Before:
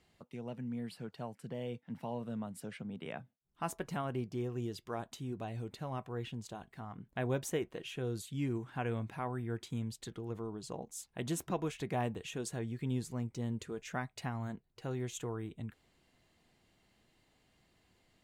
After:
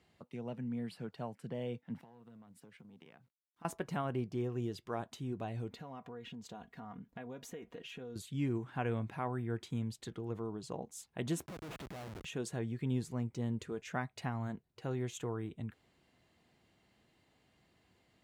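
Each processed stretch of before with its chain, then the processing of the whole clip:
0:02.01–0:03.65: mu-law and A-law mismatch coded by A + downward compressor 10 to 1, threshold −53 dBFS + notch filter 600 Hz, Q 6.3
0:05.70–0:08.16: parametric band 9,200 Hz −8.5 dB 0.28 octaves + comb filter 4.2 ms, depth 56% + downward compressor, threshold −44 dBFS
0:11.46–0:12.25: downward compressor 2.5 to 1, threshold −44 dBFS + comparator with hysteresis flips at −48 dBFS
whole clip: high-pass filter 61 Hz; high-shelf EQ 4,600 Hz −6 dB; level +1 dB

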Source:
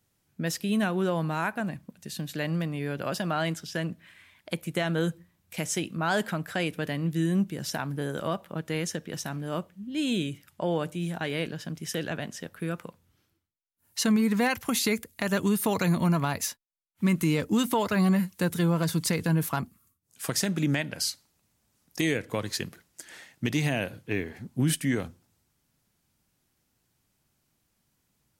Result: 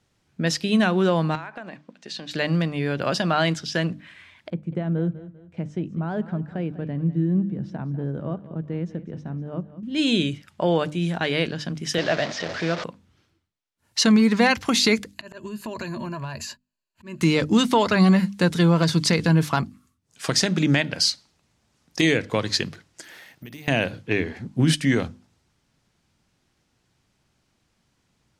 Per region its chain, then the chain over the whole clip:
0:01.35–0:02.31: band-pass filter 340–5,700 Hz + downward compressor 10 to 1, threshold −38 dBFS
0:04.50–0:09.83: resonant band-pass 100 Hz, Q 0.5 + repeating echo 197 ms, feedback 37%, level −15.5 dB
0:11.98–0:12.84: linear delta modulator 64 kbit/s, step −33 dBFS + loudspeaker in its box 130–6,200 Hz, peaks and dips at 210 Hz −5 dB, 630 Hz +9 dB, 1,900 Hz +4 dB
0:15.14–0:17.21: EQ curve with evenly spaced ripples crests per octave 1.4, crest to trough 12 dB + volume swells 642 ms + downward compressor 8 to 1, threshold −35 dBFS
0:23.03–0:23.68: high-pass filter 50 Hz + bad sample-rate conversion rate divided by 3×, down filtered, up zero stuff + downward compressor 3 to 1, threshold −42 dBFS
whole clip: low-pass filter 5,900 Hz 12 dB per octave; mains-hum notches 50/100/150/200/250/300 Hz; dynamic equaliser 4,600 Hz, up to +5 dB, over −51 dBFS, Q 1.4; level +7 dB

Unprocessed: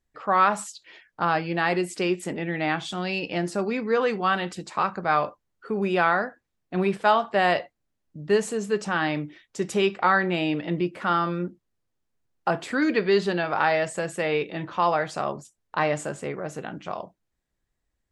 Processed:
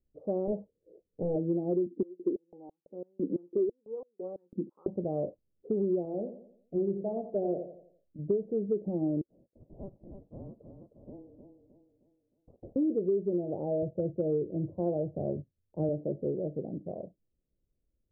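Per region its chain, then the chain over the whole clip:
0:00.47–0:01.36: low-pass that shuts in the quiet parts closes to 400 Hz, open at −19 dBFS + parametric band 470 Hz +13 dB 0.43 octaves + hard clipping −19.5 dBFS
0:01.86–0:04.88: phaser with its sweep stopped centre 1,600 Hz, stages 4 + high-pass on a step sequencer 6 Hz 240–4,700 Hz
0:06.05–0:08.19: flanger 1.5 Hz, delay 1.6 ms, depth 4.9 ms, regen −49% + repeating echo 86 ms, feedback 44%, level −10.5 dB
0:09.21–0:12.76: all-pass dispersion lows, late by 113 ms, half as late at 840 Hz + delay that swaps between a low-pass and a high-pass 155 ms, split 1,200 Hz, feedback 64%, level −3.5 dB + voice inversion scrambler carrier 3,900 Hz
0:13.82–0:15.89: parametric band 89 Hz +13.5 dB 0.94 octaves + multiband upward and downward expander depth 40%
whole clip: Butterworth low-pass 590 Hz 48 dB per octave; dynamic equaliser 350 Hz, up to +7 dB, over −41 dBFS, Q 4.7; downward compressor 6 to 1, threshold −26 dBFS

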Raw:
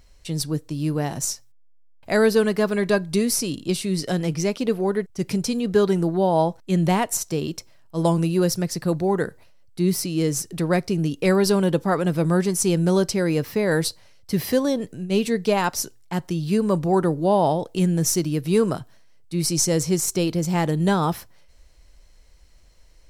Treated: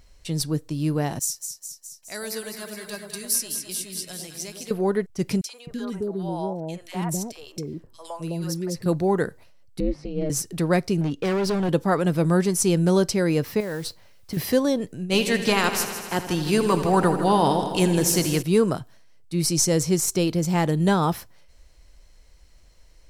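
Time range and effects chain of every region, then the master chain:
0:01.19–0:04.71: first-order pre-emphasis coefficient 0.9 + delay that swaps between a low-pass and a high-pass 104 ms, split 940 Hz, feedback 80%, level −5 dB
0:05.41–0:08.86: downward compressor 1.5 to 1, threshold −38 dBFS + three-band delay without the direct sound highs, mids, lows 50/260 ms, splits 580/1,800 Hz
0:09.80–0:10.30: head-to-tape spacing loss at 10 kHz 37 dB + ring modulation 150 Hz
0:11.01–0:11.69: parametric band 13,000 Hz −14.5 dB 1.2 octaves + gain into a clipping stage and back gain 20.5 dB
0:13.60–0:14.37: high-shelf EQ 4,900 Hz −8.5 dB + downward compressor 10 to 1, threshold −25 dBFS + noise that follows the level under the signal 20 dB
0:15.10–0:18.41: ceiling on every frequency bin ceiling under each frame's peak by 13 dB + notch filter 600 Hz, Q 11 + echo machine with several playback heads 80 ms, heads first and second, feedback 63%, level −13 dB
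whole clip: no processing

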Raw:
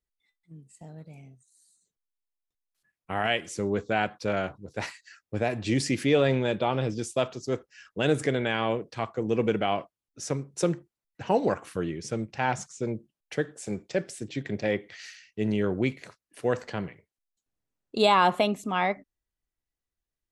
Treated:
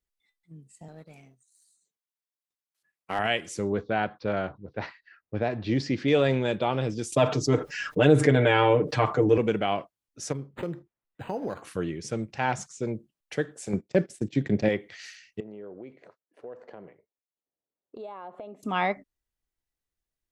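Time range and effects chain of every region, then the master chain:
0:00.88–0:03.19: high-pass filter 340 Hz 6 dB per octave + leveller curve on the samples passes 1
0:03.72–0:06.08: low-pass that shuts in the quiet parts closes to 1,500 Hz, open at −21.5 dBFS + low-pass filter 4,800 Hz 24 dB per octave + dynamic equaliser 2,600 Hz, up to −6 dB, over −48 dBFS, Q 1.7
0:07.12–0:09.38: high-shelf EQ 3,100 Hz −11 dB + comb filter 6.7 ms, depth 97% + envelope flattener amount 50%
0:10.32–0:11.62: downward compressor 3 to 1, threshold −29 dBFS + low-pass filter 7,900 Hz + linearly interpolated sample-rate reduction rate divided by 8×
0:13.73–0:14.69: noise gate −42 dBFS, range −18 dB + parametric band 190 Hz +8.5 dB 2.8 octaves
0:15.40–0:18.63: resonant band-pass 530 Hz, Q 1.3 + downward compressor 4 to 1, threshold −40 dBFS
whole clip: no processing

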